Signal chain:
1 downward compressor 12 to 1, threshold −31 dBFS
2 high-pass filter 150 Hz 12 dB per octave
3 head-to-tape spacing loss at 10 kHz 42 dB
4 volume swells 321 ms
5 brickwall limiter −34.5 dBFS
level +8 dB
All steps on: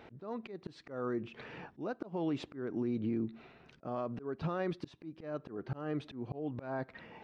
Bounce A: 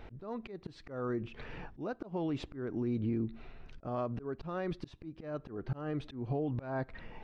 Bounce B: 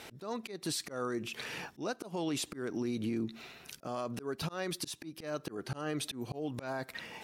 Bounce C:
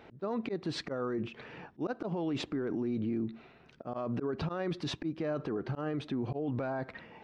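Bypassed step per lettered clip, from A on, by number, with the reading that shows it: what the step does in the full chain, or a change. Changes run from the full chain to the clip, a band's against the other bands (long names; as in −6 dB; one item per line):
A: 2, 125 Hz band +3.5 dB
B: 3, 4 kHz band +13.5 dB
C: 1, average gain reduction 10.0 dB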